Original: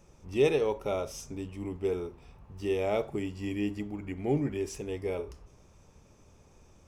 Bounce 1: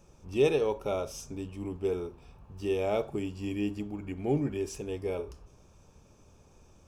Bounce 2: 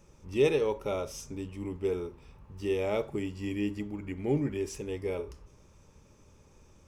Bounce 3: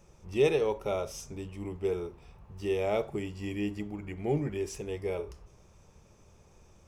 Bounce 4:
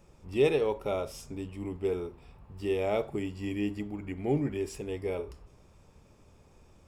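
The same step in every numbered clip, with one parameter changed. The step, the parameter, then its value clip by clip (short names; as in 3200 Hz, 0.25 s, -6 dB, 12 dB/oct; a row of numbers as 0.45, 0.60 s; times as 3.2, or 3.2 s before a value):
notch, frequency: 2000, 710, 270, 6100 Hz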